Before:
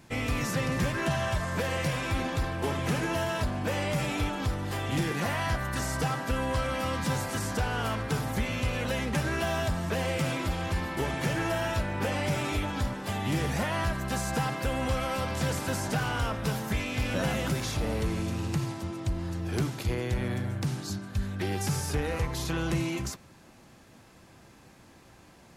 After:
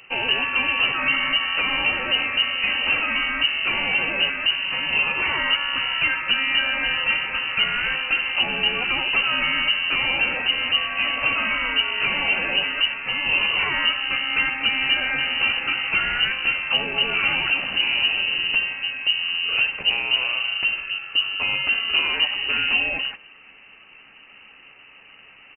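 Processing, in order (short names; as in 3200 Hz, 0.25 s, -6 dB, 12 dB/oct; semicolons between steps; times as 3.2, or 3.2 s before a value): doubler 13 ms -12 dB; inverted band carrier 2900 Hz; gain +6.5 dB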